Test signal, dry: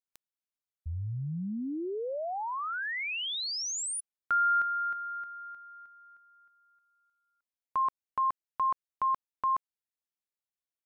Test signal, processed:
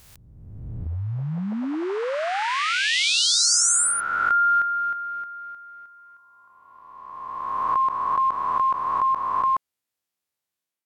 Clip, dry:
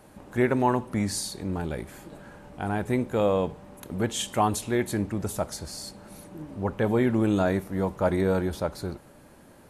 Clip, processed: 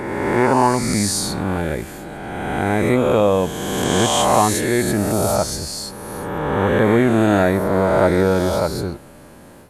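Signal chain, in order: reverse spectral sustain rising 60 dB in 2.16 s; level rider gain up to 4.5 dB; trim +2 dB; Vorbis 96 kbps 44.1 kHz

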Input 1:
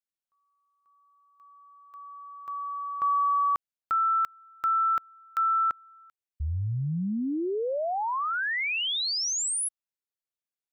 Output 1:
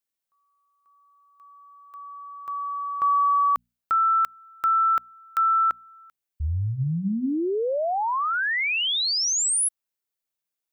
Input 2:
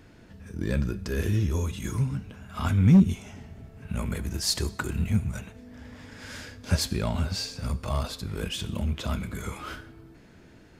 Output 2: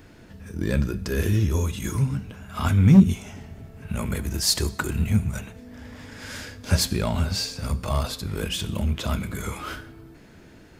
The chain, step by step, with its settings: treble shelf 12 kHz +7 dB; hum notches 60/120/180/240 Hz; trim +4 dB

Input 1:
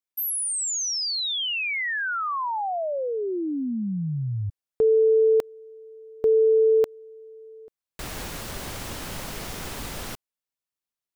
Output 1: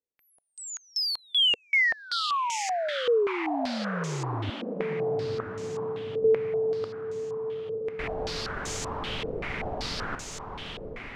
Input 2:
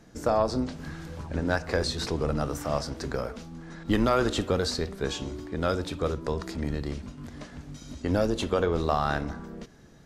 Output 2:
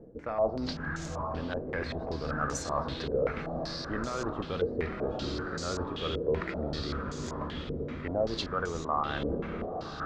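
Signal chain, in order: dynamic bell 1.2 kHz, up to +5 dB, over -44 dBFS, Q 4.2; reverse; compression 10:1, threshold -33 dBFS; reverse; hard clipper -27 dBFS; on a send: echo that smears into a reverb 935 ms, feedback 57%, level -6 dB; on the sum: step-sequenced low-pass 5.2 Hz 480–6800 Hz; trim +1.5 dB

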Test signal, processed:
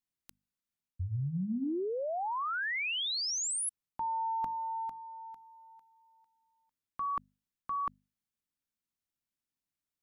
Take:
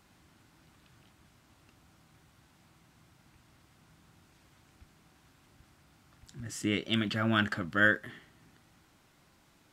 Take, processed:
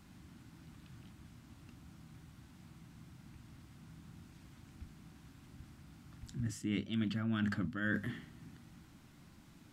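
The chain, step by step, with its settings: resonant low shelf 330 Hz +8.5 dB, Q 1.5; hum notches 50/100/150/200/250 Hz; reverse; compression 8:1, threshold -32 dBFS; reverse

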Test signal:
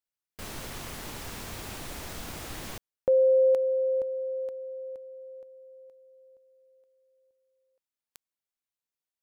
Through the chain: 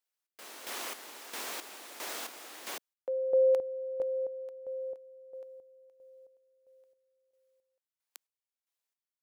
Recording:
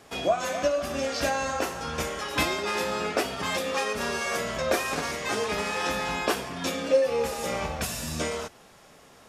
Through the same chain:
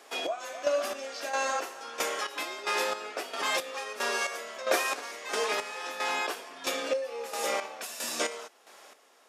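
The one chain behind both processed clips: Bessel high-pass 450 Hz, order 6; in parallel at -2 dB: gain riding within 4 dB 0.5 s; on the sum: square tremolo 1.5 Hz, depth 65%, duty 40%; trim -4 dB

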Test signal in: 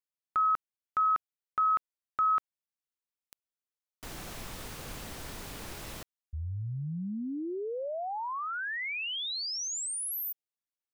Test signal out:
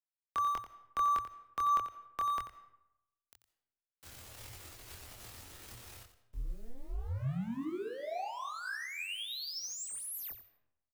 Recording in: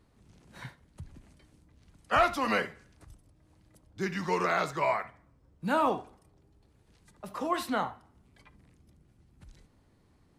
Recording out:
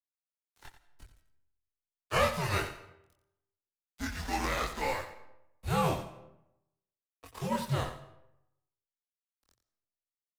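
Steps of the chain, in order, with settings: formants flattened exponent 0.6; dynamic bell 270 Hz, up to +6 dB, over -49 dBFS, Q 2.4; crossover distortion -42.5 dBFS; chorus voices 6, 0.24 Hz, delay 24 ms, depth 1.2 ms; frequency shift -120 Hz; delay 89 ms -11 dB; algorithmic reverb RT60 0.87 s, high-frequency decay 0.6×, pre-delay 110 ms, DRR 17.5 dB

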